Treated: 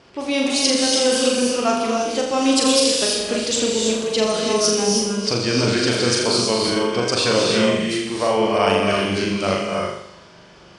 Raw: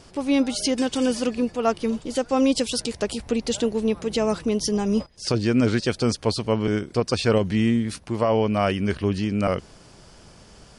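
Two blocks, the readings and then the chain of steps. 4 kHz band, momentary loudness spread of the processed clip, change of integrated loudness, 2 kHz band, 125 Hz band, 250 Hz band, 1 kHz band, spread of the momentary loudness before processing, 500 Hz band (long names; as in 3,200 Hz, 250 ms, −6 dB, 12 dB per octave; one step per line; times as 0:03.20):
+11.5 dB, 5 LU, +5.0 dB, +8.0 dB, −2.0 dB, +1.0 dB, +6.0 dB, 5 LU, +5.0 dB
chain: high-pass filter 230 Hz 6 dB per octave
low-pass that shuts in the quiet parts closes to 2,500 Hz, open at −19 dBFS
high-shelf EQ 2,700 Hz +9 dB
on a send: flutter between parallel walls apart 7 metres, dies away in 0.68 s
on the sum: reverb whose tail is shaped and stops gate 350 ms rising, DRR 0.5 dB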